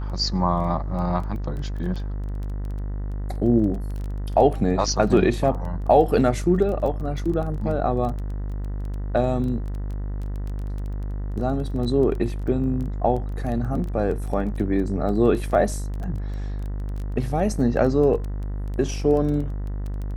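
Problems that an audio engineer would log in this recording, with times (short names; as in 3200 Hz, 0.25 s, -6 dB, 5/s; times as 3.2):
buzz 50 Hz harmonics 40 -28 dBFS
crackle 15/s -30 dBFS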